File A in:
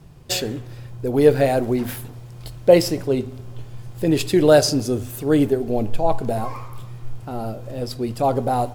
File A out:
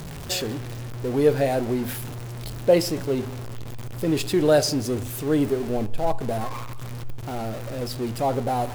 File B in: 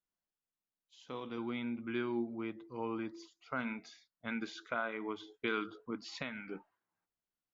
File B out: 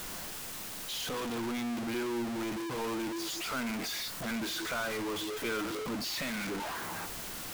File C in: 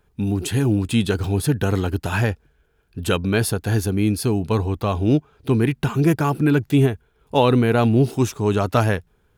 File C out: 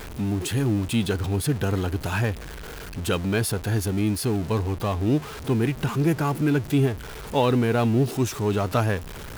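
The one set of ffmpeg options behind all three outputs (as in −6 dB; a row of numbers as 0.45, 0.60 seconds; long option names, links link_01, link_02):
-af "aeval=exprs='val(0)+0.5*0.0531*sgn(val(0))':channel_layout=same,volume=-5.5dB"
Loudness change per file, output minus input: −4.5, +5.5, −4.0 LU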